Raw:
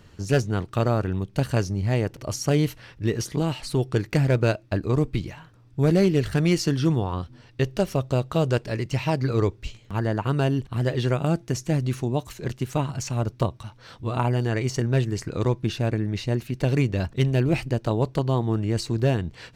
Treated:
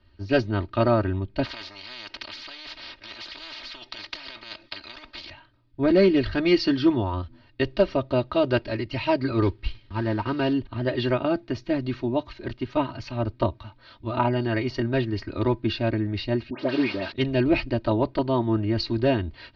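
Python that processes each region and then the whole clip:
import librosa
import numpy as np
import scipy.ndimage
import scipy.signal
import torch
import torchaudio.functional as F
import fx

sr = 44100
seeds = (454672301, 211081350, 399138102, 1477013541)

y = fx.chain(x, sr, fx.over_compress(threshold_db=-23.0, ratio=-0.5),
    fx.spectral_comp(ratio=10.0), at=(1.44, 5.3))
y = fx.chain(y, sr, fx.cvsd(bps=32000),
    fx.notch(hz=630.0, q=6.1), at=(9.42, 10.53))
y = fx.chain(y, sr, fx.delta_mod(bps=32000, step_db=-29.5),
    fx.highpass(hz=200.0, slope=12),
    fx.dispersion(late='highs', ms=98.0, hz=1500.0), at=(16.5, 17.12))
y = scipy.signal.sosfilt(scipy.signal.ellip(4, 1.0, 50, 4600.0, 'lowpass', fs=sr, output='sos'), y)
y = y + 0.92 * np.pad(y, (int(3.2 * sr / 1000.0), 0))[:len(y)]
y = fx.band_widen(y, sr, depth_pct=40)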